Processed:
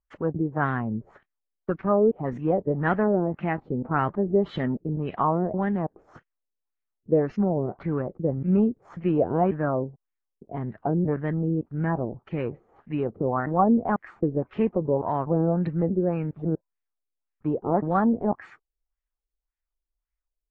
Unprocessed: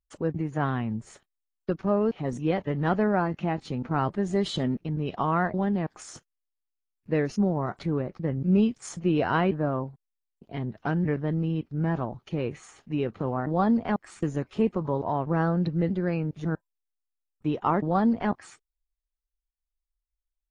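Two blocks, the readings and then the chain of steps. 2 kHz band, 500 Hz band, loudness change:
0.0 dB, +3.5 dB, +1.5 dB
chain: LFO low-pass sine 1.8 Hz 410–2100 Hz

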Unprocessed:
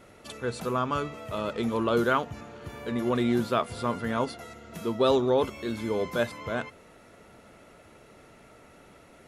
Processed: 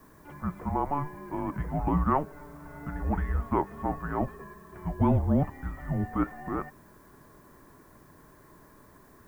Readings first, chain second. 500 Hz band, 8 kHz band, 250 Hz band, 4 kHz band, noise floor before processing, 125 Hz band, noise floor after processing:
-8.5 dB, under -10 dB, -0.5 dB, under -20 dB, -54 dBFS, +6.0 dB, -56 dBFS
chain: mistuned SSB -290 Hz 280–2100 Hz; added noise blue -65 dBFS

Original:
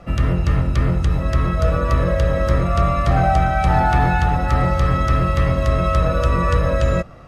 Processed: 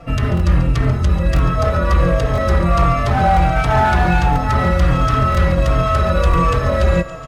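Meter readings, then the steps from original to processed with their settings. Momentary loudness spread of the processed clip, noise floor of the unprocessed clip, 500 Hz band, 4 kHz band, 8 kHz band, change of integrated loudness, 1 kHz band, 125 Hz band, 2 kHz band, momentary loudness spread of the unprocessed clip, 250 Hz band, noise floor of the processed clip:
3 LU, -23 dBFS, +2.5 dB, +4.5 dB, n/a, +2.5 dB, +3.0 dB, +2.0 dB, +3.5 dB, 3 LU, +3.0 dB, -20 dBFS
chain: thinning echo 0.14 s, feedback 59%, level -14 dB; hard clip -13 dBFS, distortion -14 dB; reverse; upward compressor, threshold -29 dBFS; reverse; crackling interface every 0.99 s, samples 1024, repeat, from 0.35; endless flanger 3.9 ms -1.4 Hz; gain +6.5 dB

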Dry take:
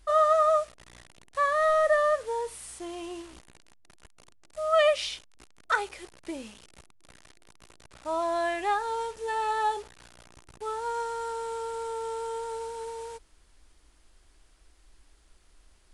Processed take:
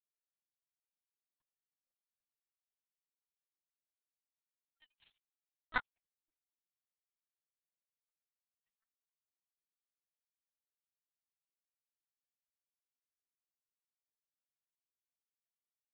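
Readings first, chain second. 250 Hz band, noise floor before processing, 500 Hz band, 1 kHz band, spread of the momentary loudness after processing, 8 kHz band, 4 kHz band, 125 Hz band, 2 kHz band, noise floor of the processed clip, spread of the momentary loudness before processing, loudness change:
-24.0 dB, -61 dBFS, under -40 dB, -26.5 dB, 0 LU, under -35 dB, -23.0 dB, n/a, -15.0 dB, under -85 dBFS, 18 LU, -11.0 dB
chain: median-filter separation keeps percussive; bands offset in time lows, highs 30 ms, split 510 Hz; power-law curve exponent 3; LPC vocoder at 8 kHz pitch kept

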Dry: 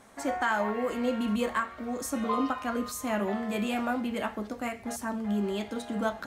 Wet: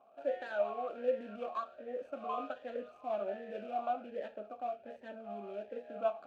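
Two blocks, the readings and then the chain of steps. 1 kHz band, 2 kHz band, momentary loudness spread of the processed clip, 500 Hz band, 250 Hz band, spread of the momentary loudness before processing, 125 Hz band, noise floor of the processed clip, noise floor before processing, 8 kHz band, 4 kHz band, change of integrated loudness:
-7.0 dB, -15.0 dB, 9 LU, -3.5 dB, -19.5 dB, 6 LU, under -20 dB, -59 dBFS, -47 dBFS, under -35 dB, -17.0 dB, -8.5 dB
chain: median filter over 25 samples; vowel sweep a-e 1.3 Hz; gain +3.5 dB

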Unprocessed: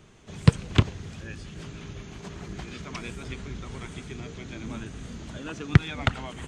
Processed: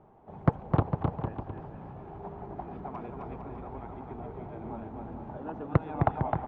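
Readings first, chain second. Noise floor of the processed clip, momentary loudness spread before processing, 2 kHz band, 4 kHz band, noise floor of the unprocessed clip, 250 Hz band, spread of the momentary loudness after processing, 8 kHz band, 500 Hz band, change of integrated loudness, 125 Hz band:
-47 dBFS, 17 LU, -12.0 dB, under -20 dB, -44 dBFS, -3.5 dB, 14 LU, under -35 dB, +2.0 dB, -5.0 dB, -5.5 dB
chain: synth low-pass 820 Hz, resonance Q 4.9; low shelf 130 Hz -6 dB; on a send: bouncing-ball echo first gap 0.26 s, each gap 0.75×, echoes 5; on the sum: Doppler distortion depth 0.89 ms; gain -4 dB

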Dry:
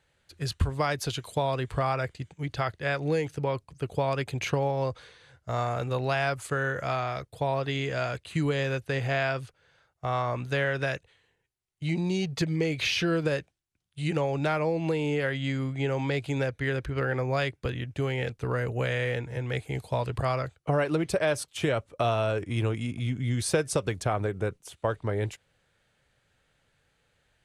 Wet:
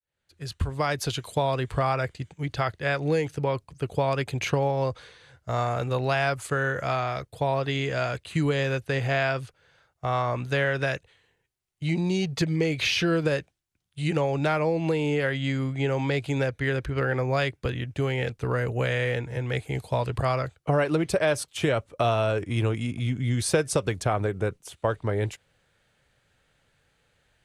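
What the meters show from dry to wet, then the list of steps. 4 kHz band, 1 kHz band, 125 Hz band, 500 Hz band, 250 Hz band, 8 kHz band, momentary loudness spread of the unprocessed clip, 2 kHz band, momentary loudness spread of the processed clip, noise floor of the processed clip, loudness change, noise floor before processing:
+2.5 dB, +2.5 dB, +2.5 dB, +2.5 dB, +2.5 dB, +2.5 dB, 7 LU, +2.5 dB, 7 LU, -74 dBFS, +2.5 dB, -73 dBFS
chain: opening faded in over 1.00 s; gain +2.5 dB

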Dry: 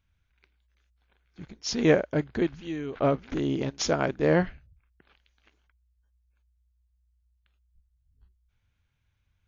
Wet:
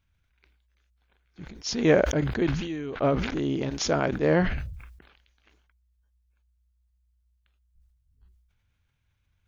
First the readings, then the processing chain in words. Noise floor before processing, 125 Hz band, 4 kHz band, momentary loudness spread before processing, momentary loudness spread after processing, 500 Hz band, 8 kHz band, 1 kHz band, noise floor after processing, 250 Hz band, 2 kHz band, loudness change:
-74 dBFS, +2.5 dB, +1.5 dB, 12 LU, 11 LU, +1.0 dB, n/a, +1.0 dB, -72 dBFS, +1.0 dB, +2.0 dB, +1.0 dB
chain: sustainer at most 53 dB/s

